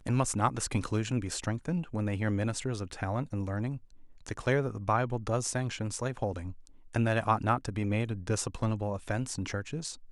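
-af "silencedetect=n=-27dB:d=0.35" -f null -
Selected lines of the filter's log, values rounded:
silence_start: 3.70
silence_end: 4.27 | silence_duration: 0.57
silence_start: 6.38
silence_end: 6.96 | silence_duration: 0.58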